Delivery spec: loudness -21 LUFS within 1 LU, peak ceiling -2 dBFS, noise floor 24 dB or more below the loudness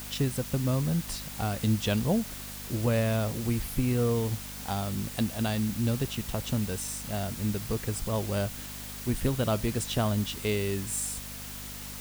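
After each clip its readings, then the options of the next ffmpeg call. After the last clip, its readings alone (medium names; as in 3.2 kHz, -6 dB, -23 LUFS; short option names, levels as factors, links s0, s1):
hum 50 Hz; highest harmonic 250 Hz; hum level -42 dBFS; noise floor -40 dBFS; noise floor target -54 dBFS; loudness -30.0 LUFS; peak level -13.0 dBFS; loudness target -21.0 LUFS
-> -af "bandreject=f=50:t=h:w=4,bandreject=f=100:t=h:w=4,bandreject=f=150:t=h:w=4,bandreject=f=200:t=h:w=4,bandreject=f=250:t=h:w=4"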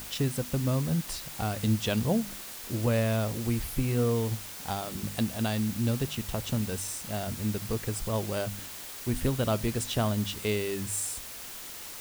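hum not found; noise floor -42 dBFS; noise floor target -55 dBFS
-> -af "afftdn=nr=13:nf=-42"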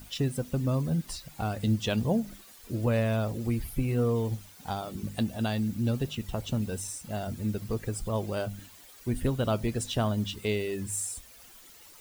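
noise floor -52 dBFS; noise floor target -55 dBFS
-> -af "afftdn=nr=6:nf=-52"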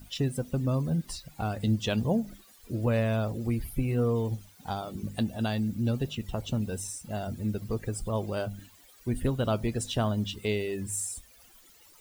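noise floor -57 dBFS; loudness -31.0 LUFS; peak level -14.0 dBFS; loudness target -21.0 LUFS
-> -af "volume=3.16"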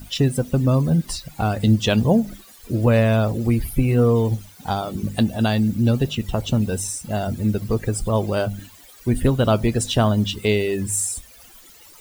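loudness -21.0 LUFS; peak level -4.0 dBFS; noise floor -47 dBFS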